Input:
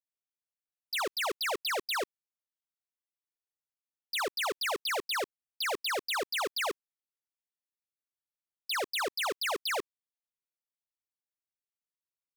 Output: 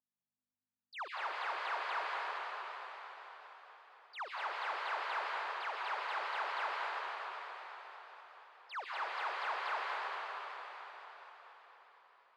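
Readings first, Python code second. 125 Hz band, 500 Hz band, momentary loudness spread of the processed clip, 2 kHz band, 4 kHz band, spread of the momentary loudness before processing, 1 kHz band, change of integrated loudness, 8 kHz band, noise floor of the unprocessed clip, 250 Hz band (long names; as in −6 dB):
can't be measured, −11.0 dB, 17 LU, −4.0 dB, −13.0 dB, 5 LU, −0.5 dB, −7.5 dB, below −20 dB, below −85 dBFS, below −15 dB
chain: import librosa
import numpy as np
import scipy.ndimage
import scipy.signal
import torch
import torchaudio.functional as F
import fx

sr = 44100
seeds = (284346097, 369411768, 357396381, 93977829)

y = fx.add_hum(x, sr, base_hz=50, snr_db=25)
y = fx.rev_plate(y, sr, seeds[0], rt60_s=4.9, hf_ratio=0.95, predelay_ms=115, drr_db=-6.0)
y = fx.vibrato(y, sr, rate_hz=8.2, depth_cents=77.0)
y = fx.ladder_bandpass(y, sr, hz=1200.0, resonance_pct=35)
y = y * librosa.db_to_amplitude(1.5)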